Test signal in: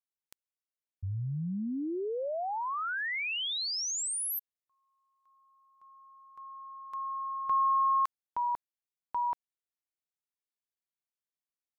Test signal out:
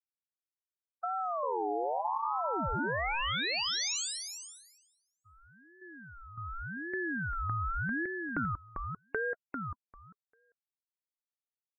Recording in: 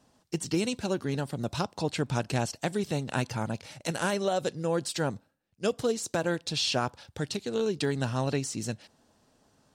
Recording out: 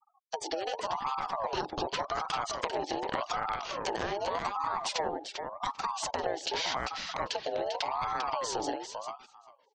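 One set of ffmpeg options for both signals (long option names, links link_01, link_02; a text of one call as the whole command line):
ffmpeg -i in.wav -filter_complex "[0:a]lowpass=frequency=6300:width=0.5412,lowpass=frequency=6300:width=1.3066,dynaudnorm=framelen=250:gausssize=11:maxgain=3.5dB,afreqshift=-400,acompressor=threshold=-37dB:ratio=8:attack=28:release=67:knee=6:detection=rms,afftfilt=real='re*gte(hypot(re,im),0.00398)':imag='im*gte(hypot(re,im),0.00398)':win_size=1024:overlap=0.75,asplit=2[link_01][link_02];[link_02]adelay=396,lowpass=frequency=4600:poles=1,volume=-4.5dB,asplit=2[link_03][link_04];[link_04]adelay=396,lowpass=frequency=4600:poles=1,volume=0.15,asplit=2[link_05][link_06];[link_06]adelay=396,lowpass=frequency=4600:poles=1,volume=0.15[link_07];[link_03][link_05][link_07]amix=inputs=3:normalize=0[link_08];[link_01][link_08]amix=inputs=2:normalize=0,aeval=exprs='val(0)*sin(2*PI*810*n/s+810*0.3/0.86*sin(2*PI*0.86*n/s))':channel_layout=same,volume=6.5dB" out.wav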